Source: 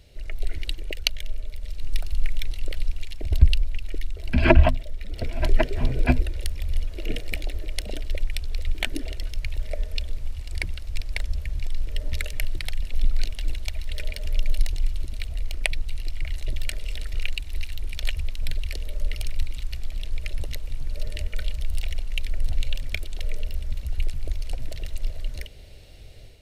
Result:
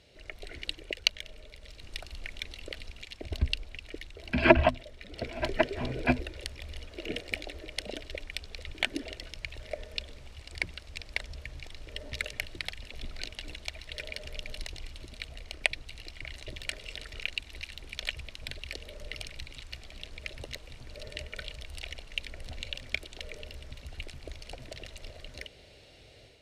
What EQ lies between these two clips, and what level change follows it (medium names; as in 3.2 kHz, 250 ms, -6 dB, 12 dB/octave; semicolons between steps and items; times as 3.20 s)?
high-pass 290 Hz 6 dB/octave; distance through air 53 m; 0.0 dB